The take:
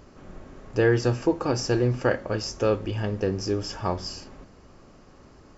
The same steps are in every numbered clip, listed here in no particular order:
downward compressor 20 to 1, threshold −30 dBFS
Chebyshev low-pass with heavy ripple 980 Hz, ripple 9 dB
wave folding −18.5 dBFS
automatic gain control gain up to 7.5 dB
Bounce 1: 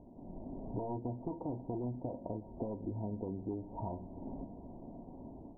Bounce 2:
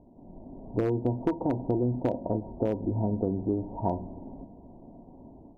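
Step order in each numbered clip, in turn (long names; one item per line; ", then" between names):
wave folding, then automatic gain control, then downward compressor, then Chebyshev low-pass with heavy ripple
Chebyshev low-pass with heavy ripple, then wave folding, then downward compressor, then automatic gain control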